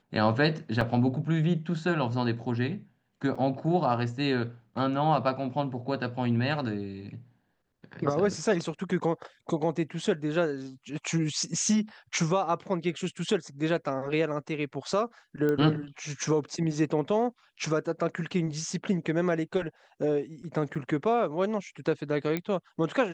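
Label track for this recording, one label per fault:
0.810000	0.810000	dropout 2.4 ms
3.350000	3.360000	dropout 5.1 ms
15.490000	15.490000	pop -18 dBFS
20.750000	20.750000	dropout 5 ms
22.370000	22.370000	pop -16 dBFS

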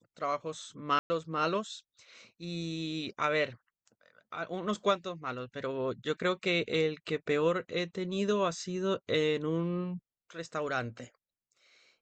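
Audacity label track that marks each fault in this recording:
0.990000	1.100000	dropout 110 ms

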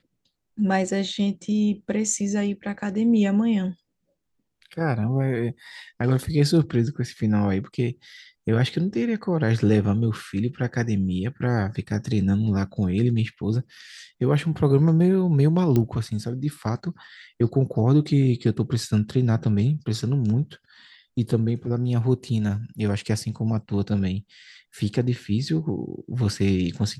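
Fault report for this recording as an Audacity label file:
15.760000	15.760000	pop -11 dBFS

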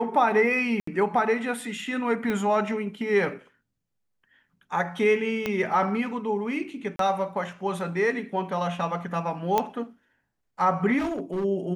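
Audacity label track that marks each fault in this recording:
0.800000	0.870000	dropout 74 ms
2.300000	2.300000	pop -16 dBFS
5.460000	5.460000	pop -13 dBFS
6.960000	6.990000	dropout 33 ms
9.580000	9.580000	pop -9 dBFS
10.980000	11.450000	clipped -24.5 dBFS

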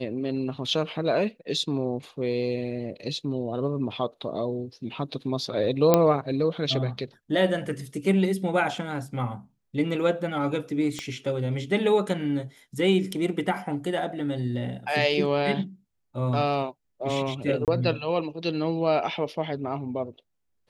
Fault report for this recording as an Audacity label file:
5.940000	5.940000	pop -4 dBFS
10.990000	10.990000	pop -18 dBFS
17.650000	17.680000	dropout 28 ms

